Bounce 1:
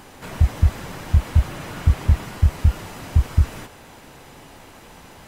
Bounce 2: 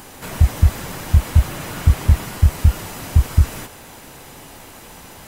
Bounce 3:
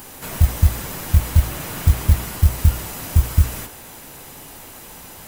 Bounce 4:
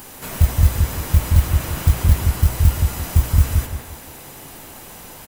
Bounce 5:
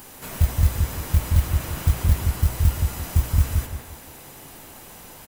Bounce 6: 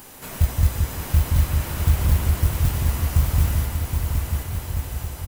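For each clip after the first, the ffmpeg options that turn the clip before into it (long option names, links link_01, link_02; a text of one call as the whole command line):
ffmpeg -i in.wav -af "highshelf=frequency=7400:gain=11,volume=3dB" out.wav
ffmpeg -i in.wav -af "acrusher=bits=7:mode=log:mix=0:aa=0.000001,highshelf=frequency=11000:gain=10.5,bandreject=frequency=60.2:width_type=h:width=4,bandreject=frequency=120.4:width_type=h:width=4,bandreject=frequency=180.6:width_type=h:width=4,bandreject=frequency=240.8:width_type=h:width=4,bandreject=frequency=301:width_type=h:width=4,bandreject=frequency=361.2:width_type=h:width=4,bandreject=frequency=421.4:width_type=h:width=4,bandreject=frequency=481.6:width_type=h:width=4,bandreject=frequency=541.8:width_type=h:width=4,bandreject=frequency=602:width_type=h:width=4,bandreject=frequency=662.2:width_type=h:width=4,bandreject=frequency=722.4:width_type=h:width=4,bandreject=frequency=782.6:width_type=h:width=4,bandreject=frequency=842.8:width_type=h:width=4,bandreject=frequency=903:width_type=h:width=4,bandreject=frequency=963.2:width_type=h:width=4,bandreject=frequency=1023.4:width_type=h:width=4,bandreject=frequency=1083.6:width_type=h:width=4,bandreject=frequency=1143.8:width_type=h:width=4,bandreject=frequency=1204:width_type=h:width=4,bandreject=frequency=1264.2:width_type=h:width=4,bandreject=frequency=1324.4:width_type=h:width=4,bandreject=frequency=1384.6:width_type=h:width=4,bandreject=frequency=1444.8:width_type=h:width=4,bandreject=frequency=1505:width_type=h:width=4,bandreject=frequency=1565.2:width_type=h:width=4,bandreject=frequency=1625.4:width_type=h:width=4,bandreject=frequency=1685.6:width_type=h:width=4,bandreject=frequency=1745.8:width_type=h:width=4,bandreject=frequency=1806:width_type=h:width=4,bandreject=frequency=1866.2:width_type=h:width=4,bandreject=frequency=1926.4:width_type=h:width=4,bandreject=frequency=1986.6:width_type=h:width=4,bandreject=frequency=2046.8:width_type=h:width=4,bandreject=frequency=2107:width_type=h:width=4,bandreject=frequency=2167.2:width_type=h:width=4,bandreject=frequency=2227.4:width_type=h:width=4,bandreject=frequency=2287.6:width_type=h:width=4,bandreject=frequency=2347.8:width_type=h:width=4,volume=-1dB" out.wav
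ffmpeg -i in.wav -filter_complex "[0:a]asplit=2[link_01][link_02];[link_02]adelay=173,lowpass=frequency=2000:poles=1,volume=-4dB,asplit=2[link_03][link_04];[link_04]adelay=173,lowpass=frequency=2000:poles=1,volume=0.32,asplit=2[link_05][link_06];[link_06]adelay=173,lowpass=frequency=2000:poles=1,volume=0.32,asplit=2[link_07][link_08];[link_08]adelay=173,lowpass=frequency=2000:poles=1,volume=0.32[link_09];[link_01][link_03][link_05][link_07][link_09]amix=inputs=5:normalize=0" out.wav
ffmpeg -i in.wav -af "acrusher=bits=8:mode=log:mix=0:aa=0.000001,volume=-4.5dB" out.wav
ffmpeg -i in.wav -af "aecho=1:1:770|1386|1879|2273|2588:0.631|0.398|0.251|0.158|0.1" out.wav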